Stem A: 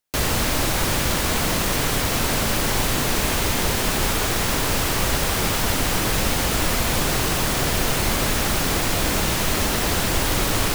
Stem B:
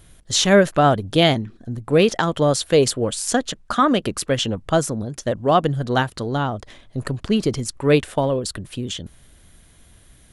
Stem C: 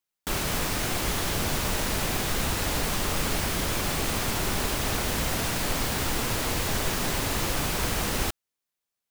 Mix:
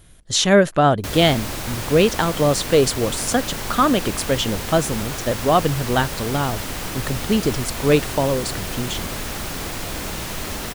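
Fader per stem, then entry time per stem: -7.0 dB, 0.0 dB, mute; 0.90 s, 0.00 s, mute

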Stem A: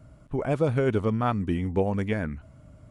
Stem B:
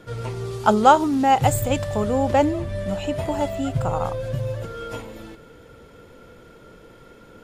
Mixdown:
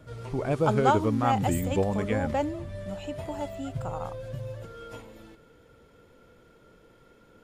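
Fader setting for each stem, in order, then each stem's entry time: -1.5 dB, -10.0 dB; 0.00 s, 0.00 s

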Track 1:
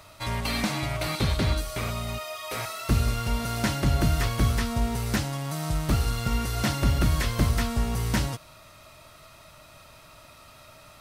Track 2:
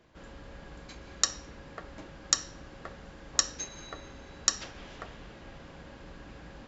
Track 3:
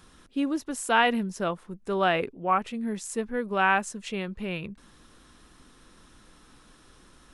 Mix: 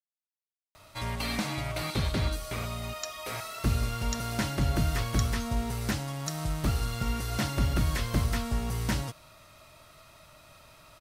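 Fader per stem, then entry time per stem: -4.0 dB, -12.5 dB, mute; 0.75 s, 1.80 s, mute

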